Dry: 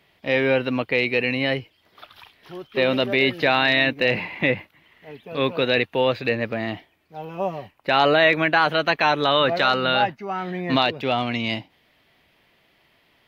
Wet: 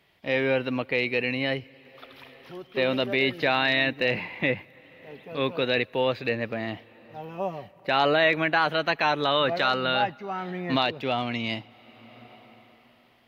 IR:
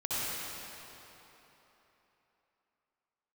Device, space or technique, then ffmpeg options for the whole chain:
ducked reverb: -filter_complex "[0:a]asplit=3[link_01][link_02][link_03];[1:a]atrim=start_sample=2205[link_04];[link_02][link_04]afir=irnorm=-1:irlink=0[link_05];[link_03]apad=whole_len=585505[link_06];[link_05][link_06]sidechaincompress=threshold=-41dB:ratio=4:attack=8.5:release=497,volume=-15.5dB[link_07];[link_01][link_07]amix=inputs=2:normalize=0,volume=-4.5dB"

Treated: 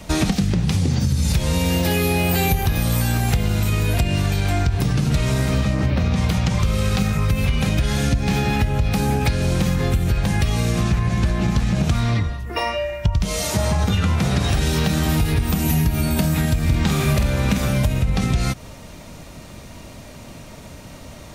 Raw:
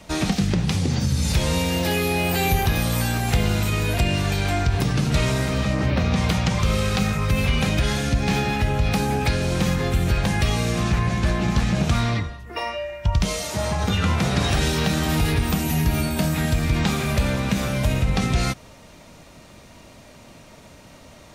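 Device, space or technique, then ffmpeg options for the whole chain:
ASMR close-microphone chain: -filter_complex "[0:a]lowshelf=frequency=210:gain=6.5,acompressor=threshold=-20dB:ratio=6,highshelf=frequency=10000:gain=6.5,asettb=1/sr,asplit=3[link_01][link_02][link_03];[link_01]atrim=end=16.614[link_04];[link_02]atrim=start=16.61:end=17.62,asetpts=PTS-STARTPTS,afade=type=in:duration=0.004:curve=qsin,afade=type=out:start_time=1.006:duration=0.004:curve=qsin,asplit=2[link_05][link_06];[link_06]adelay=48,volume=-6.5dB[link_07];[link_05][link_07]amix=inputs=2:normalize=0,atrim=end_sample=44541[link_08];[link_03]atrim=start=17.616[link_09];[link_04][link_08]acrossfade=duration=0.004:curve1=hsin:curve2=qsin[link_10];[link_10][link_09]acrossfade=duration=0.004:curve1=qsin:curve2=hsin,volume=4.5dB"

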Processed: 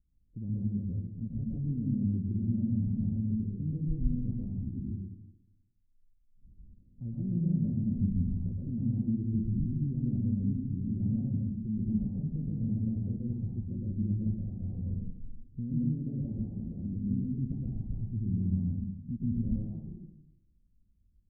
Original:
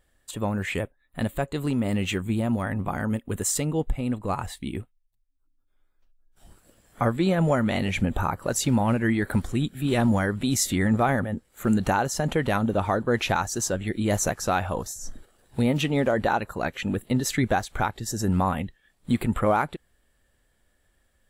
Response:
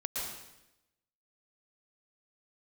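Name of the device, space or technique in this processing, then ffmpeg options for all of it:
club heard from the street: -filter_complex "[0:a]alimiter=limit=-18.5dB:level=0:latency=1,lowpass=frequency=230:width=0.5412,lowpass=frequency=230:width=1.3066[link_01];[1:a]atrim=start_sample=2205[link_02];[link_01][link_02]afir=irnorm=-1:irlink=0,volume=-3dB"

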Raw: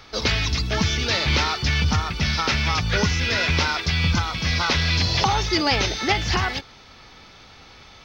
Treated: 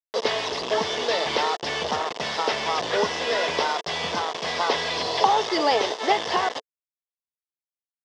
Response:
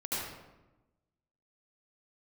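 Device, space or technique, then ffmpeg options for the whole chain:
hand-held game console: -af "acrusher=bits=3:mix=0:aa=0.000001,highpass=400,equalizer=frequency=450:width_type=q:width=4:gain=9,equalizer=frequency=670:width_type=q:width=4:gain=7,equalizer=frequency=1000:width_type=q:width=4:gain=5,equalizer=frequency=1400:width_type=q:width=4:gain=-8,equalizer=frequency=2400:width_type=q:width=4:gain=-10,equalizer=frequency=4200:width_type=q:width=4:gain=-7,lowpass=frequency=4900:width=0.5412,lowpass=frequency=4900:width=1.3066"

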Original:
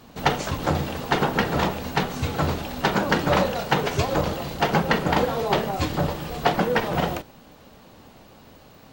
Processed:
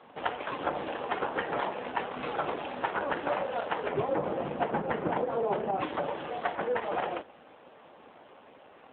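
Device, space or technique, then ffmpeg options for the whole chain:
voicemail: -filter_complex "[0:a]asplit=3[link_01][link_02][link_03];[link_01]afade=type=out:start_time=3.87:duration=0.02[link_04];[link_02]aemphasis=mode=reproduction:type=riaa,afade=type=in:start_time=3.87:duration=0.02,afade=type=out:start_time=5.8:duration=0.02[link_05];[link_03]afade=type=in:start_time=5.8:duration=0.02[link_06];[link_04][link_05][link_06]amix=inputs=3:normalize=0,highpass=390,lowpass=3000,acompressor=threshold=-26dB:ratio=12,volume=1.5dB" -ar 8000 -c:a libopencore_amrnb -b:a 7400

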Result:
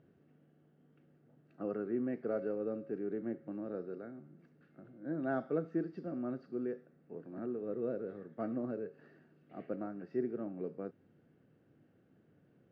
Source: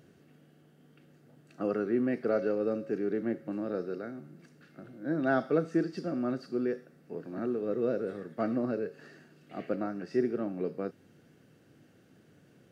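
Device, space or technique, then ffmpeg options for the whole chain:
phone in a pocket: -af "lowpass=3500,highshelf=frequency=2000:gain=-11,volume=-6.5dB"

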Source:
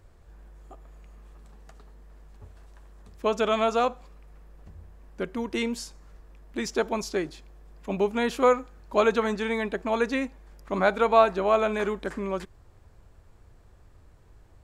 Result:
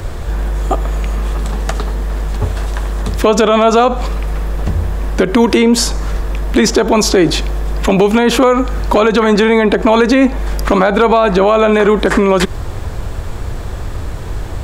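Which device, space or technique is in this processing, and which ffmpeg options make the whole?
mastering chain: -filter_complex "[0:a]equalizer=frequency=3500:width_type=o:width=0.32:gain=3.5,acrossover=split=210|1600[link_01][link_02][link_03];[link_01]acompressor=threshold=-44dB:ratio=4[link_04];[link_02]acompressor=threshold=-29dB:ratio=4[link_05];[link_03]acompressor=threshold=-45dB:ratio=4[link_06];[link_04][link_05][link_06]amix=inputs=3:normalize=0,acompressor=threshold=-33dB:ratio=3,asoftclip=type=hard:threshold=-26dB,alimiter=level_in=33.5dB:limit=-1dB:release=50:level=0:latency=1,volume=-1dB"

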